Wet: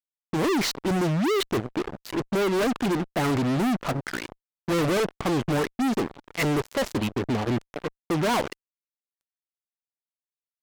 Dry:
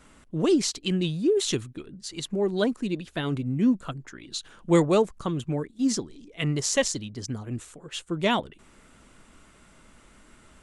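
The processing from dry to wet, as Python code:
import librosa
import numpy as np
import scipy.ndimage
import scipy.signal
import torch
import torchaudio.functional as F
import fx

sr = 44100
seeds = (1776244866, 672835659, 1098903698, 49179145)

y = fx.filter_lfo_lowpass(x, sr, shape='saw_up', hz=1.4, low_hz=480.0, high_hz=2000.0, q=1.3)
y = fx.bass_treble(y, sr, bass_db=-8, treble_db=5)
y = fx.fuzz(y, sr, gain_db=46.0, gate_db=-45.0)
y = y * librosa.db_to_amplitude(-8.5)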